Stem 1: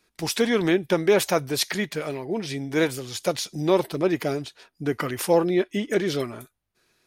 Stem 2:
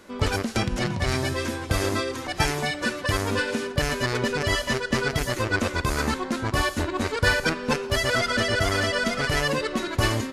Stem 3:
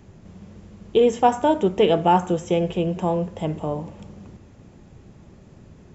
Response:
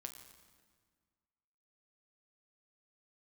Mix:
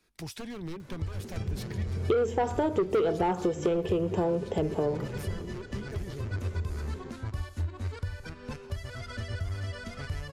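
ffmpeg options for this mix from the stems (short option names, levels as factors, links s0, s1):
-filter_complex "[0:a]lowshelf=f=150:g=8,aeval=exprs='0.158*(abs(mod(val(0)/0.158+3,4)-2)-1)':c=same,volume=0.562[s0];[1:a]equalizer=f=85:t=o:w=0.41:g=12,acompressor=mode=upward:threshold=0.0224:ratio=2.5,adelay=800,volume=0.596[s1];[2:a]equalizer=f=410:t=o:w=0.56:g=13,asoftclip=type=tanh:threshold=0.376,adelay=1150,volume=0.841[s2];[s0][s1]amix=inputs=2:normalize=0,acrossover=split=130[s3][s4];[s4]acompressor=threshold=0.00794:ratio=4[s5];[s3][s5]amix=inputs=2:normalize=0,alimiter=limit=0.0668:level=0:latency=1:release=393,volume=1[s6];[s2][s6]amix=inputs=2:normalize=0,acompressor=threshold=0.0631:ratio=6"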